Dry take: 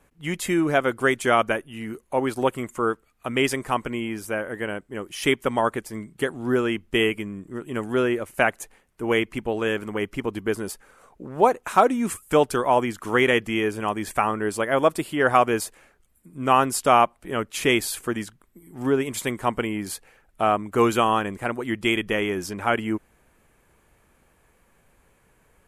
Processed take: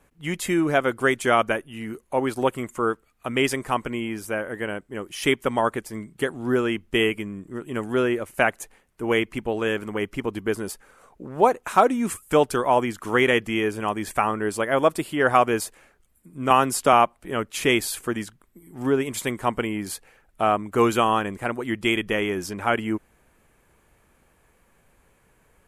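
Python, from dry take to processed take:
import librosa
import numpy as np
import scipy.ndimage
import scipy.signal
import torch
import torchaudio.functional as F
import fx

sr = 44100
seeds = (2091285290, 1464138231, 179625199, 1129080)

y = fx.band_squash(x, sr, depth_pct=40, at=(16.5, 16.93))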